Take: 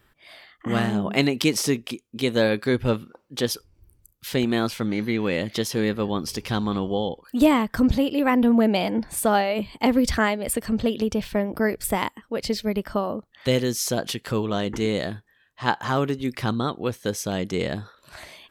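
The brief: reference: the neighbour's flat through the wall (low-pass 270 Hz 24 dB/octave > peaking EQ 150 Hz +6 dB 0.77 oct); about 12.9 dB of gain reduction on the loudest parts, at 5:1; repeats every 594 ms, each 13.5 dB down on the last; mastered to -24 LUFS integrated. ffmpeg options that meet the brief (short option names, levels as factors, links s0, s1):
-af "acompressor=threshold=0.0355:ratio=5,lowpass=f=270:w=0.5412,lowpass=f=270:w=1.3066,equalizer=f=150:t=o:w=0.77:g=6,aecho=1:1:594|1188:0.211|0.0444,volume=3.76"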